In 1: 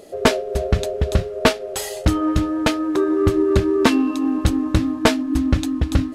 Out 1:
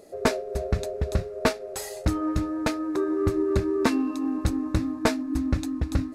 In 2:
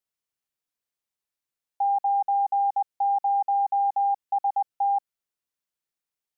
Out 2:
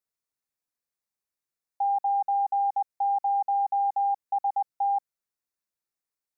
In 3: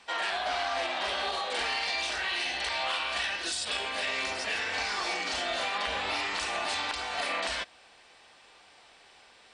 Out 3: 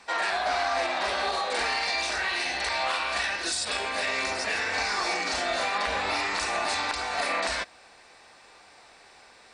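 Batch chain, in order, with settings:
bell 3100 Hz -10 dB 0.34 oct; match loudness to -27 LUFS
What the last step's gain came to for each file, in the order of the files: -7.0, -2.0, +5.0 dB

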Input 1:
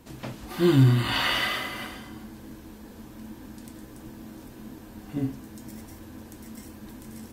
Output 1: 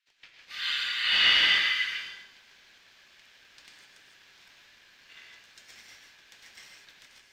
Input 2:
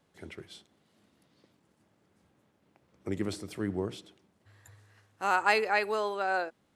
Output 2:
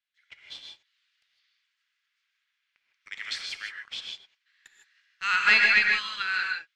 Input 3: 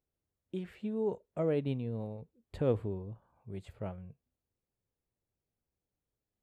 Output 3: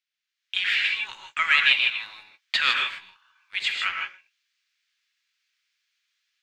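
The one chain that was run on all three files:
Bessel high-pass 2800 Hz, order 8; AGC gain up to 11 dB; sample leveller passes 2; air absorption 210 m; non-linear reverb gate 0.18 s rising, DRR 1.5 dB; match loudness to -23 LUFS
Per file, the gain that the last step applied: -4.5, +1.0, +23.5 dB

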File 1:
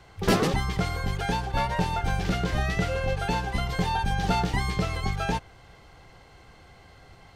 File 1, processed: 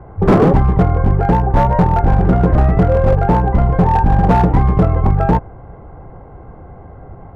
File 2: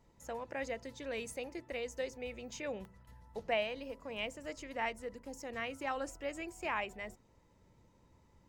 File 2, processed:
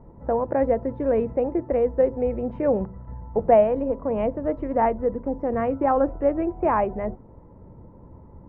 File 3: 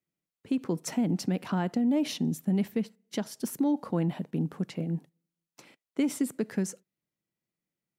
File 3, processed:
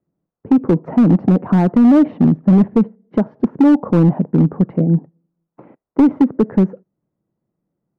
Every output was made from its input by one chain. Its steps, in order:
Bessel low-pass 760 Hz, order 4; overloaded stage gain 23.5 dB; normalise peaks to -6 dBFS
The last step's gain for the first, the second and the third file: +17.5, +21.0, +17.5 dB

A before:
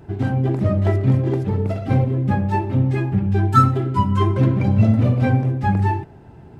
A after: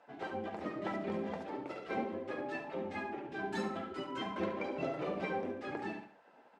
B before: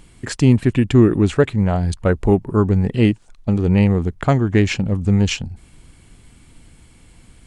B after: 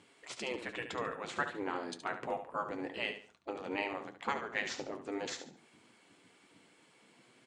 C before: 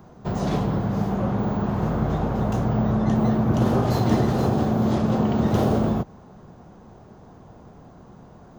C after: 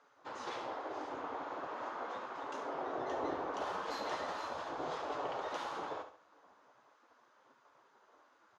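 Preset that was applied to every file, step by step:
high shelf 5600 Hz -8 dB; spectral gate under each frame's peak -15 dB weak; flange 0.39 Hz, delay 6.8 ms, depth 4.3 ms, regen -54%; BPF 140–8000 Hz; feedback echo 71 ms, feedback 30%, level -9.5 dB; gain -3 dB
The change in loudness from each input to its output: -20.5, -21.5, -18.0 LU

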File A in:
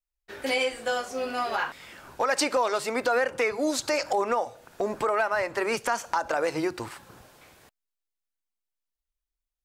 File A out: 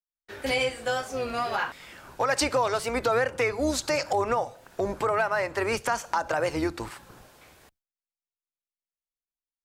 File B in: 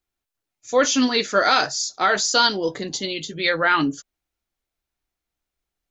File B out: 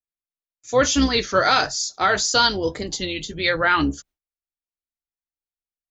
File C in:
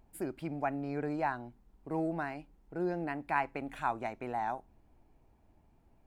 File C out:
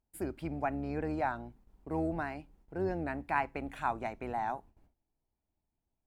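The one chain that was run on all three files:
octaver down 2 oct, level -6 dB; gate with hold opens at -53 dBFS; record warp 33 1/3 rpm, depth 100 cents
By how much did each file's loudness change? 0.0, 0.0, 0.0 LU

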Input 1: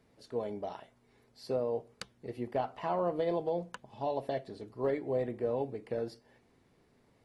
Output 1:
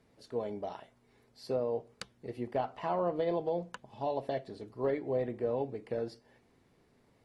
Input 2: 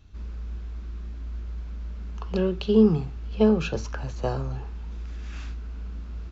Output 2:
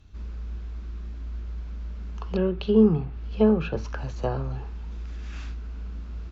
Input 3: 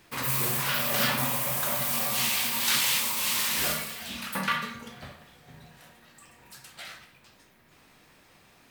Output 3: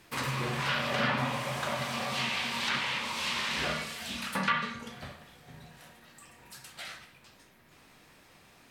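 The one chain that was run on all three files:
treble ducked by the level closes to 2400 Hz, closed at -21.5 dBFS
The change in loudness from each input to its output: 0.0, 0.0, -6.0 LU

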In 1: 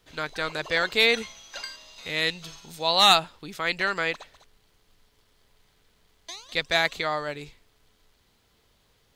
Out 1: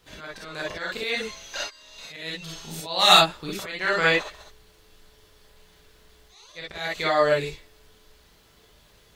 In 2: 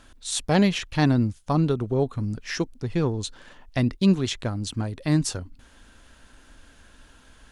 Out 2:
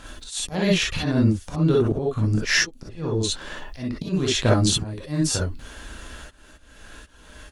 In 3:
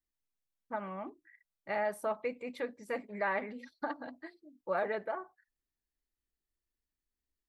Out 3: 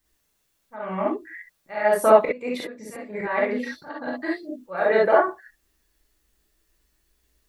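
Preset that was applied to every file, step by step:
auto swell 0.554 s; non-linear reverb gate 80 ms rising, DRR -4 dB; match loudness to -23 LUFS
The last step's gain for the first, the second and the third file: +3.5, +8.0, +17.0 dB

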